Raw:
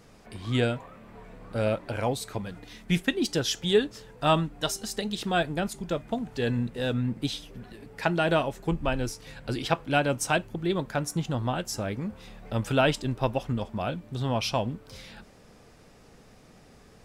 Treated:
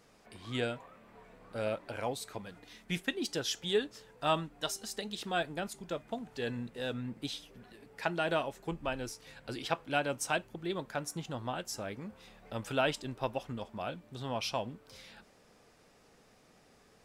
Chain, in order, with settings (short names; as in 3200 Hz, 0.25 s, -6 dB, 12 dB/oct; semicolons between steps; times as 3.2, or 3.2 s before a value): low shelf 210 Hz -10 dB; gain -6 dB